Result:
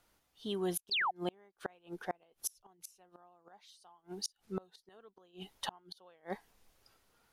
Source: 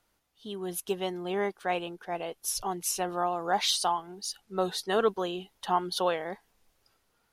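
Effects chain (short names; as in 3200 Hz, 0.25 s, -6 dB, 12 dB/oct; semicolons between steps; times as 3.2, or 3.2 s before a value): flipped gate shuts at -25 dBFS, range -34 dB; painted sound fall, 0.91–1.11, 670–5000 Hz -33 dBFS; gain +1 dB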